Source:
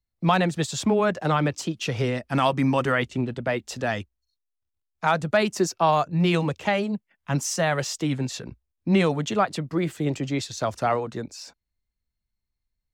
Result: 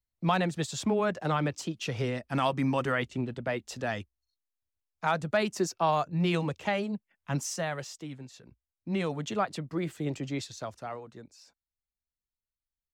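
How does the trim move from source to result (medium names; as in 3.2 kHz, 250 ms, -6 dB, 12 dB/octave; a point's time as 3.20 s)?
7.41 s -6 dB
8.30 s -18.5 dB
9.29 s -7 dB
10.43 s -7 dB
10.83 s -15.5 dB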